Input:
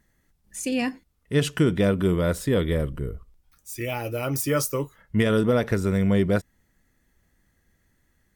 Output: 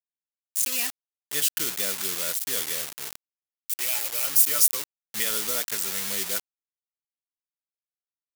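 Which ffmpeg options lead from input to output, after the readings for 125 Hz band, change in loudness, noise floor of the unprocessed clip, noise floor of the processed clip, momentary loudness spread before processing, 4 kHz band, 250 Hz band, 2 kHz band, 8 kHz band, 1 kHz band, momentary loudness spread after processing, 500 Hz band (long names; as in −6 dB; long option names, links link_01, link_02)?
below −25 dB, +0.5 dB, −69 dBFS, below −85 dBFS, 11 LU, +5.5 dB, −21.5 dB, −2.5 dB, +11.0 dB, −7.0 dB, 13 LU, −15.5 dB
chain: -af "anlmdn=1.58,acrusher=bits=4:mix=0:aa=0.000001,aderivative,volume=7.5dB"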